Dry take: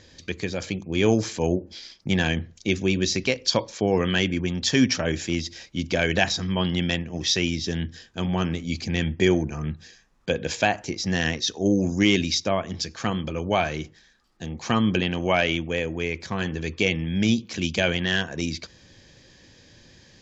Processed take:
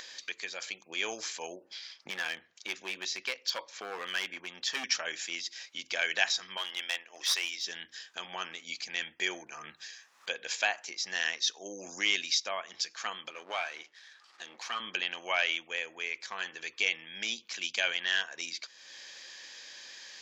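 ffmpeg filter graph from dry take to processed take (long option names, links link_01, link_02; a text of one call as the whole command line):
ffmpeg -i in.wav -filter_complex "[0:a]asettb=1/sr,asplit=3[link_01][link_02][link_03];[link_01]atrim=end=1.664[link_04];[link_02]atrim=start=1.66:end=4.84,asetpts=PTS-STARTPTS,afade=type=in:duration=0.004:curve=qsin,afade=type=out:start_time=3.176:duration=0.004:curve=qsin,highshelf=frequency=5200:gain=-11.5,volume=17.5dB,asoftclip=hard,volume=-17.5dB[link_05];[link_03]atrim=start=4.836[link_06];[link_04][link_05]acrossfade=duration=0.004:curve1=hsin:curve2=qsin[link_07];[link_07][link_06]acrossfade=duration=0.004:curve1=qsin:curve2=hsin,asettb=1/sr,asplit=3[link_08][link_09][link_10];[link_08]atrim=end=6.574[link_11];[link_09]atrim=start=6.57:end=7.64,asetpts=PTS-STARTPTS,afade=type=in:duration=0.004:curve=qsin,afade=type=out:start_time=1.066:duration=0.004:curve=qsin,highpass=390,aeval=exprs='clip(val(0),-1,0.0596)':channel_layout=same[link_12];[link_10]atrim=start=7.636[link_13];[link_11][link_12]acrossfade=duration=0.004:curve1=hsin:curve2=qsin[link_14];[link_14][link_13]acrossfade=duration=0.004:curve1=qsin:curve2=hsin,asettb=1/sr,asplit=3[link_15][link_16][link_17];[link_15]atrim=end=13.314[link_18];[link_16]atrim=start=13.31:end=14.8,asetpts=PTS-STARTPTS,afade=type=in:duration=0.004:curve=qsin,afade=type=out:start_time=1.486:duration=0.004:curve=qsin,aeval=exprs='if(lt(val(0),0),0.447*val(0),val(0))':channel_layout=same,highpass=220,lowpass=5900[link_19];[link_17]atrim=start=14.796[link_20];[link_18][link_19]acrossfade=duration=0.004:curve1=hsin:curve2=qsin[link_21];[link_21][link_20]acrossfade=duration=0.004:curve1=qsin:curve2=hsin,highpass=1100,acompressor=mode=upward:threshold=-33dB:ratio=2.5,volume=-3.5dB" out.wav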